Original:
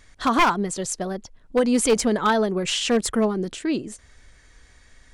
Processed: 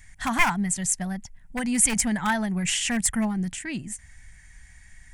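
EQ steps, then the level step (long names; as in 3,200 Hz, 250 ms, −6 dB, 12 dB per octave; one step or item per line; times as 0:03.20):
drawn EQ curve 180 Hz 0 dB, 450 Hz −26 dB, 810 Hz −5 dB, 1,200 Hz −14 dB, 1,900 Hz +2 dB, 4,000 Hz −12 dB, 8,300 Hz +3 dB
+3.5 dB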